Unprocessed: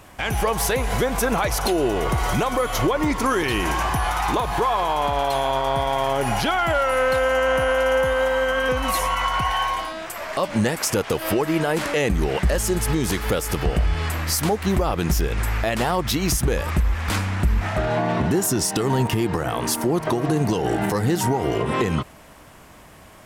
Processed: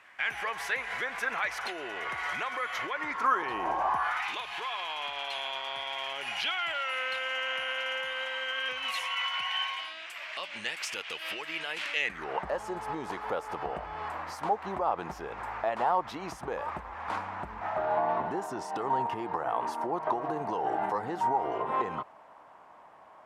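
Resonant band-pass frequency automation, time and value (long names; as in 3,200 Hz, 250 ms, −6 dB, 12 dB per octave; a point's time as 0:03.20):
resonant band-pass, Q 2.4
0:02.96 1,900 Hz
0:03.78 670 Hz
0:04.31 2,700 Hz
0:11.98 2,700 Hz
0:12.39 890 Hz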